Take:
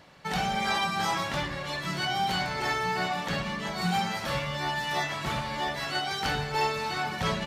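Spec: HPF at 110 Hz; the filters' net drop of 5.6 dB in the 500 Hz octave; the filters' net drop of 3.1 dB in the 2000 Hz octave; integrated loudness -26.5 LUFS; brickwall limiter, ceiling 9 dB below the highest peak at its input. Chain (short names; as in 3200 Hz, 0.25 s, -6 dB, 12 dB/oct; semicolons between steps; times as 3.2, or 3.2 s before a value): HPF 110 Hz; bell 500 Hz -7 dB; bell 2000 Hz -3.5 dB; gain +8.5 dB; limiter -18.5 dBFS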